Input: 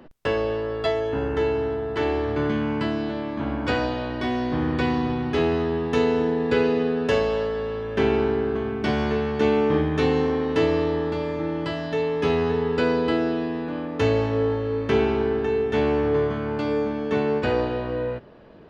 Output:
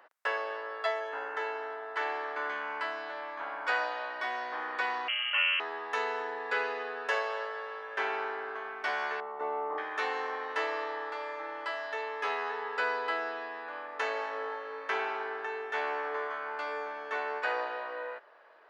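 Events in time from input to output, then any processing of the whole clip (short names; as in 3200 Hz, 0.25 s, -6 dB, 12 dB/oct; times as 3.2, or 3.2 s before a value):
5.08–5.6 inverted band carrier 3100 Hz
9.2–9.78 polynomial smoothing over 65 samples
whole clip: Bessel high-pass 1000 Hz, order 4; resonant high shelf 2300 Hz -6.5 dB, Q 1.5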